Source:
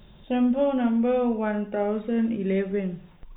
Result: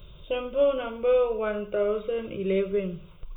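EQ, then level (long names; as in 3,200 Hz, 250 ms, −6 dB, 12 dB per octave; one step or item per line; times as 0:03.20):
bass and treble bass +7 dB, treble +4 dB
low-shelf EQ 240 Hz −5 dB
phaser with its sweep stopped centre 1,200 Hz, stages 8
+3.5 dB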